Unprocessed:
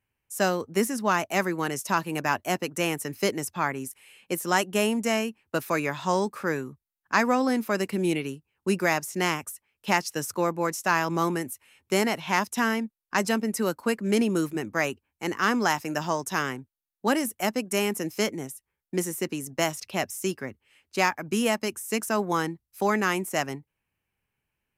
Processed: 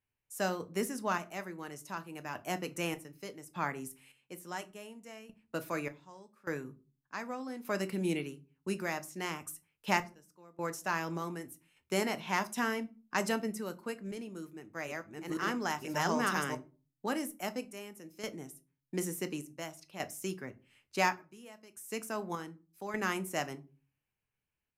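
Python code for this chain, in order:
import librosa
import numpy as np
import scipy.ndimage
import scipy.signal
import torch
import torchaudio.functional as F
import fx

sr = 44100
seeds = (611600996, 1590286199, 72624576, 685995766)

y = fx.reverse_delay(x, sr, ms=491, wet_db=-1, at=(14.39, 16.55))
y = fx.tremolo_random(y, sr, seeds[0], hz=1.7, depth_pct=95)
y = fx.room_shoebox(y, sr, seeds[1], volume_m3=150.0, walls='furnished', distance_m=0.46)
y = y * librosa.db_to_amplitude(-6.0)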